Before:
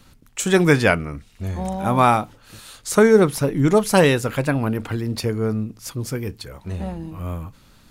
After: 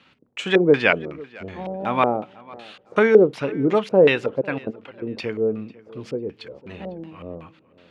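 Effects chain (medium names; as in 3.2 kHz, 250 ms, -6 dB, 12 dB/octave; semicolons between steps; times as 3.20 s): 4.41–5.02 s: level held to a coarse grid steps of 21 dB; LFO low-pass square 2.7 Hz 490–2800 Hz; Bessel high-pass 250 Hz, order 2; on a send: tape echo 500 ms, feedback 28%, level -20 dB, low-pass 3.2 kHz; on the sum: trim -2.5 dB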